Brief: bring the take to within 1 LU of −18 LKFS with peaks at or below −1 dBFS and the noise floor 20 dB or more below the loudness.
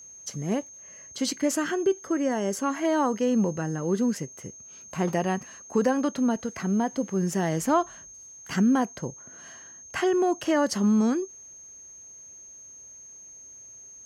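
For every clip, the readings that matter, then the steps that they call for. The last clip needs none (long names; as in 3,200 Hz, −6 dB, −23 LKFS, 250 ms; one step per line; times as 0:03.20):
interfering tone 6,400 Hz; level of the tone −44 dBFS; integrated loudness −26.5 LKFS; sample peak −11.5 dBFS; target loudness −18.0 LKFS
→ notch filter 6,400 Hz, Q 30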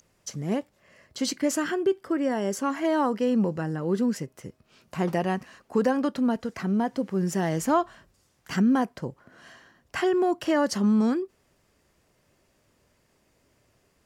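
interfering tone none found; integrated loudness −26.5 LKFS; sample peak −12.0 dBFS; target loudness −18.0 LKFS
→ level +8.5 dB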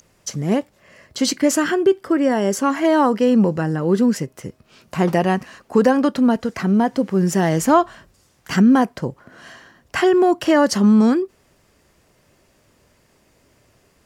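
integrated loudness −18.0 LKFS; sample peak −3.5 dBFS; background noise floor −59 dBFS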